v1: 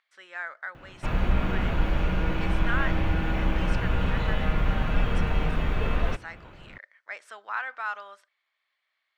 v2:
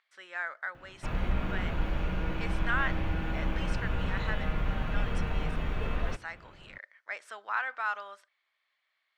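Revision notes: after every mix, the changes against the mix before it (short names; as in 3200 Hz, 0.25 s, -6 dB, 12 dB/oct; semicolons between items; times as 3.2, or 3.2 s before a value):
background -6.0 dB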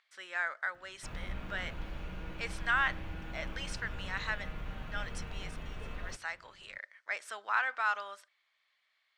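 background -11.0 dB; master: add high shelf 3500 Hz +8 dB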